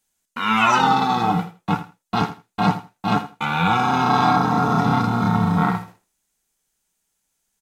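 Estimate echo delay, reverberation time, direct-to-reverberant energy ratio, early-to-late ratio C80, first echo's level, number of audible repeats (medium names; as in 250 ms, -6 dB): 81 ms, no reverb, no reverb, no reverb, -13.5 dB, 2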